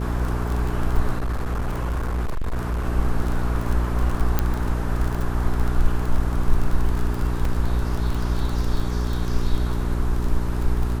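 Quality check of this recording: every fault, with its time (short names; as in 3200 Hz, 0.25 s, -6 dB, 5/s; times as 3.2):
crackle 30/s -24 dBFS
hum 60 Hz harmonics 7 -25 dBFS
1.16–2.87 clipped -20.5 dBFS
4.39 pop -6 dBFS
7.45 gap 3.2 ms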